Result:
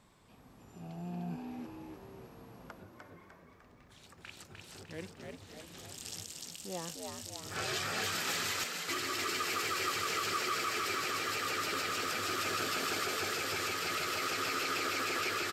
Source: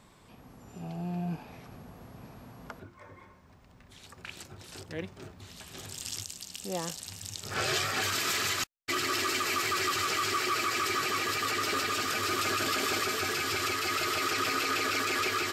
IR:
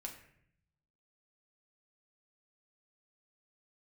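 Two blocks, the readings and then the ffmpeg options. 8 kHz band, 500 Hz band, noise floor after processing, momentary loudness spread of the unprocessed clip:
-4.5 dB, -4.0 dB, -59 dBFS, 19 LU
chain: -filter_complex "[0:a]asplit=8[a][b][c][d][e][f][g][h];[b]adelay=301,afreqshift=71,volume=-4dB[i];[c]adelay=602,afreqshift=142,volume=-9.8dB[j];[d]adelay=903,afreqshift=213,volume=-15.7dB[k];[e]adelay=1204,afreqshift=284,volume=-21.5dB[l];[f]adelay=1505,afreqshift=355,volume=-27.4dB[m];[g]adelay=1806,afreqshift=426,volume=-33.2dB[n];[h]adelay=2107,afreqshift=497,volume=-39.1dB[o];[a][i][j][k][l][m][n][o]amix=inputs=8:normalize=0,volume=-6.5dB"

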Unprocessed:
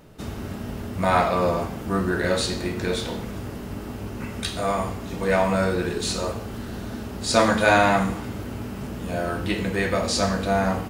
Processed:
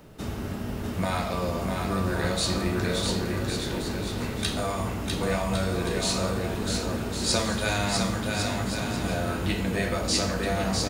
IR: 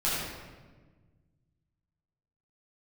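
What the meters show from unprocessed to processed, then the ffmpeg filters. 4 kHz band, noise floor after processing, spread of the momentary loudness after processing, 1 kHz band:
+1.0 dB, -33 dBFS, 5 LU, -7.0 dB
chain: -filter_complex "[0:a]acrossover=split=150|3000[a][b][c];[b]acompressor=threshold=-28dB:ratio=6[d];[a][d][c]amix=inputs=3:normalize=0,acrusher=bits=11:mix=0:aa=0.000001,aecho=1:1:650|1105|1424|1646|1803:0.631|0.398|0.251|0.158|0.1"

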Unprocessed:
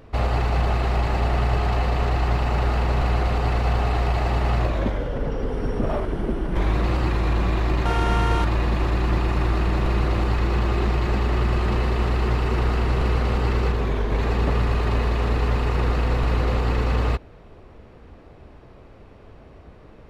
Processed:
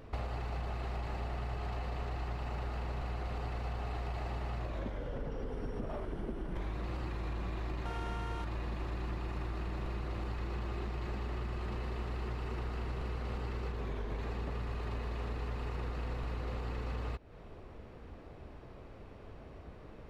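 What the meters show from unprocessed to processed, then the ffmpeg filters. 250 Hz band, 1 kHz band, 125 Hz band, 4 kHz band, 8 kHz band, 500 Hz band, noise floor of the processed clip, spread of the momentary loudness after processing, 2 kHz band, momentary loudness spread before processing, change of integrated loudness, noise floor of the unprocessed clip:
-16.5 dB, -16.5 dB, -16.5 dB, -16.5 dB, n/a, -16.0 dB, -51 dBFS, 13 LU, -16.5 dB, 3 LU, -16.5 dB, -47 dBFS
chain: -af "acompressor=threshold=-31dB:ratio=6,volume=-4.5dB"

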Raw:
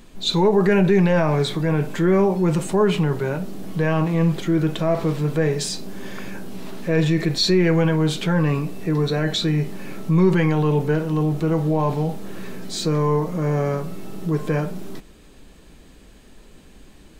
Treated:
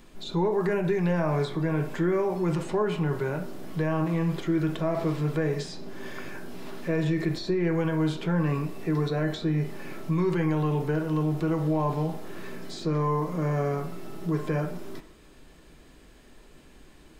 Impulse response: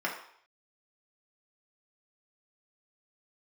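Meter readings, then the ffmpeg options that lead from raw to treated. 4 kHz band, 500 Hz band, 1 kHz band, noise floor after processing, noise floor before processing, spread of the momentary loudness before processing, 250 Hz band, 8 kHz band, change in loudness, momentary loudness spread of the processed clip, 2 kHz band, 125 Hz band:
-14.5 dB, -7.0 dB, -5.5 dB, -53 dBFS, -47 dBFS, 14 LU, -6.5 dB, -14.0 dB, -7.0 dB, 14 LU, -7.5 dB, -7.0 dB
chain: -filter_complex "[0:a]acrossover=split=1200|6000[a][b][c];[a]acompressor=threshold=-18dB:ratio=4[d];[b]acompressor=threshold=-37dB:ratio=4[e];[c]acompressor=threshold=-51dB:ratio=4[f];[d][e][f]amix=inputs=3:normalize=0,asplit=2[g][h];[1:a]atrim=start_sample=2205[i];[h][i]afir=irnorm=-1:irlink=0,volume=-10.5dB[j];[g][j]amix=inputs=2:normalize=0,volume=-6.5dB"

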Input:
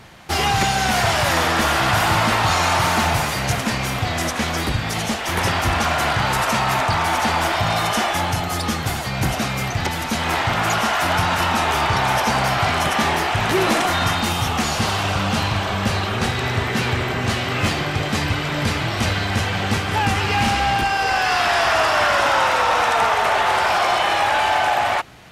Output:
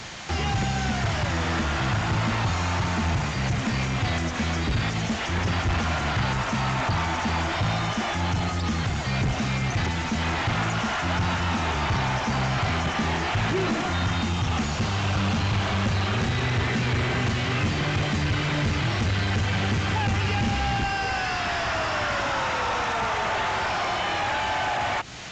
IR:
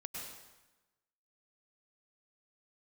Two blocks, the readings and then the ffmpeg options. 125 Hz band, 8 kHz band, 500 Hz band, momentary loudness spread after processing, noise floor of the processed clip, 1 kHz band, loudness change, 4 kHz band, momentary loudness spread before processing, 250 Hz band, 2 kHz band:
-1.0 dB, -10.0 dB, -8.0 dB, 2 LU, -28 dBFS, -9.0 dB, -6.0 dB, -7.5 dB, 5 LU, -2.5 dB, -7.0 dB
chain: -filter_complex "[0:a]crystalizer=i=4.5:c=0,acrossover=split=290[a][b];[b]acompressor=threshold=-24dB:ratio=6[c];[a][c]amix=inputs=2:normalize=0,asoftclip=type=tanh:threshold=-22.5dB,acrossover=split=2800[d][e];[e]acompressor=threshold=-41dB:ratio=4:attack=1:release=60[f];[d][f]amix=inputs=2:normalize=0,aresample=16000,aresample=44100,volume=3.5dB" -ar 48000 -c:a sbc -b:a 128k

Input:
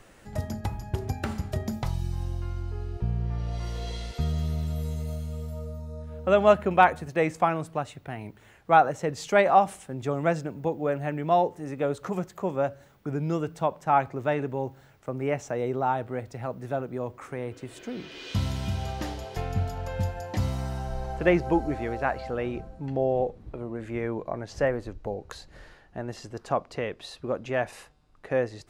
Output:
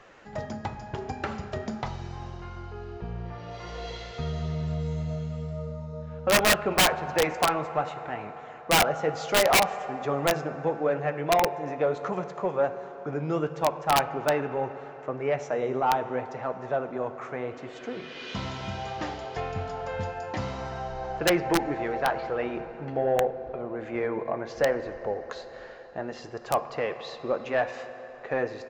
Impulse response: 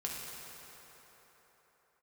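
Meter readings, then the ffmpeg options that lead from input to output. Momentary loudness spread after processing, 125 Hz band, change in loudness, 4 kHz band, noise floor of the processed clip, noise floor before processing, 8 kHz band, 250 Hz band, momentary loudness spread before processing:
15 LU, -4.5 dB, 0.0 dB, +10.5 dB, -43 dBFS, -55 dBFS, +11.5 dB, -2.0 dB, 15 LU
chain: -filter_complex "[0:a]aresample=16000,aresample=44100,flanger=delay=1.6:depth=7.4:regen=-63:speed=0.72:shape=sinusoidal,asplit=2[a][b];[b]highpass=f=720:p=1,volume=18dB,asoftclip=type=tanh:threshold=-9dB[c];[a][c]amix=inputs=2:normalize=0,lowpass=f=1.7k:p=1,volume=-6dB,asplit=2[d][e];[1:a]atrim=start_sample=2205[f];[e][f]afir=irnorm=-1:irlink=0,volume=-8.5dB[g];[d][g]amix=inputs=2:normalize=0,aeval=exprs='(mod(3.55*val(0)+1,2)-1)/3.55':c=same,volume=-3.5dB"

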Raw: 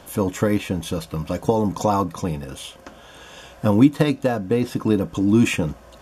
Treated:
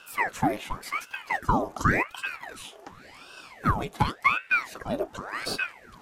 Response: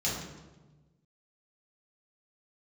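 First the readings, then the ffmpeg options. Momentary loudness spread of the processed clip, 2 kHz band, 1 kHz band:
19 LU, +5.5 dB, +0.5 dB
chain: -af "lowshelf=f=360:t=q:w=3:g=-13,aeval=exprs='val(0)*sin(2*PI*1100*n/s+1100*0.9/0.9*sin(2*PI*0.9*n/s))':c=same,volume=-4dB"

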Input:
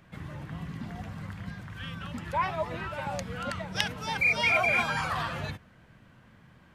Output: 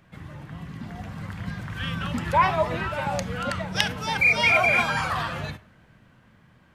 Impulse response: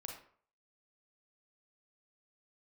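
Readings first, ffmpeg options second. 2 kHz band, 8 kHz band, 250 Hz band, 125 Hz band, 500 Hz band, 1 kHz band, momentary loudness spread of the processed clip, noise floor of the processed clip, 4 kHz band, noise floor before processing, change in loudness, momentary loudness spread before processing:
+5.5 dB, +5.5 dB, +6.0 dB, +5.5 dB, +6.5 dB, +6.5 dB, 20 LU, -57 dBFS, +5.5 dB, -58 dBFS, +6.5 dB, 17 LU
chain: -filter_complex "[0:a]dynaudnorm=f=250:g=13:m=14dB,asplit=2[a][b];[1:a]atrim=start_sample=2205,asetrate=52920,aresample=44100[c];[b][c]afir=irnorm=-1:irlink=0,volume=-6dB[d];[a][d]amix=inputs=2:normalize=0,volume=-2dB"

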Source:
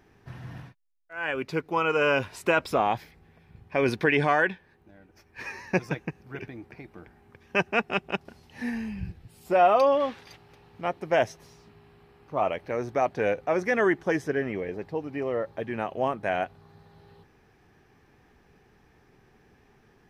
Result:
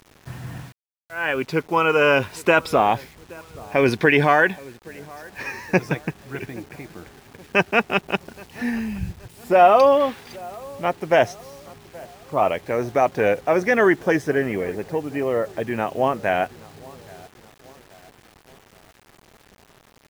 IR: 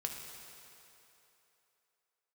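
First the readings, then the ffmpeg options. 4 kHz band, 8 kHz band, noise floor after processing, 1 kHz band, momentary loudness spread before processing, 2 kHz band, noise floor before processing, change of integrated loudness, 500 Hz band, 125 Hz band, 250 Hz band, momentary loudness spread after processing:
+6.5 dB, n/a, -55 dBFS, +6.5 dB, 18 LU, +6.5 dB, -61 dBFS, +6.5 dB, +6.5 dB, +6.5 dB, +6.5 dB, 20 LU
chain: -filter_complex "[0:a]asplit=2[a][b];[b]adelay=824,lowpass=f=1.6k:p=1,volume=-22dB,asplit=2[c][d];[d]adelay=824,lowpass=f=1.6k:p=1,volume=0.53,asplit=2[e][f];[f]adelay=824,lowpass=f=1.6k:p=1,volume=0.53,asplit=2[g][h];[h]adelay=824,lowpass=f=1.6k:p=1,volume=0.53[i];[a][c][e][g][i]amix=inputs=5:normalize=0,acrusher=bits=8:mix=0:aa=0.000001,volume=6.5dB"

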